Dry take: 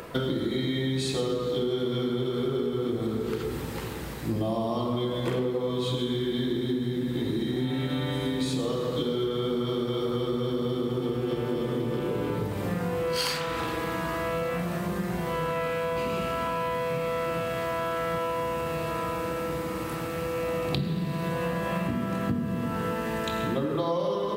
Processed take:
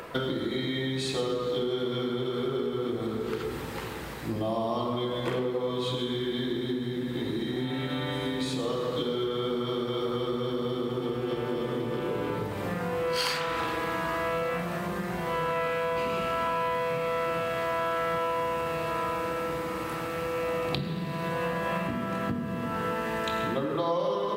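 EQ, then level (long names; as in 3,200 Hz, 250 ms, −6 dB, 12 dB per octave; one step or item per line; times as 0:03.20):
low-shelf EQ 490 Hz −9 dB
high-shelf EQ 3,600 Hz −8 dB
+4.0 dB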